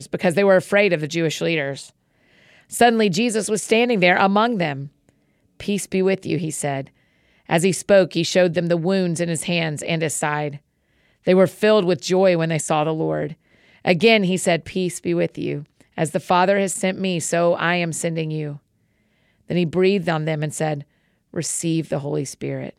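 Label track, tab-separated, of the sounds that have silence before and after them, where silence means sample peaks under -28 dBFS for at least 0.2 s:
2.730000	4.860000	sound
5.600000	6.820000	sound
7.500000	10.560000	sound
11.270000	13.320000	sound
13.850000	15.600000	sound
15.980000	18.540000	sound
19.500000	20.810000	sound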